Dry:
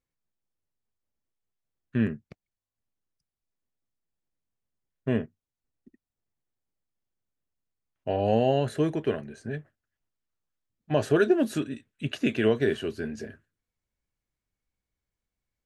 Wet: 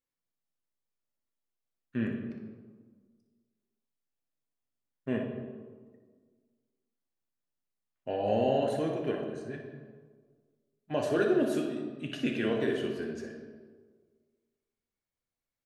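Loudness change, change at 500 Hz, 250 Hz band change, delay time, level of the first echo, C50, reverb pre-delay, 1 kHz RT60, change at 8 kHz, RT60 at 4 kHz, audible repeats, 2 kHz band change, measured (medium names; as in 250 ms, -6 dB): -4.5 dB, -3.5 dB, -4.0 dB, 60 ms, -9.0 dB, 3.5 dB, 3 ms, 1.5 s, no reading, 0.95 s, 1, -4.5 dB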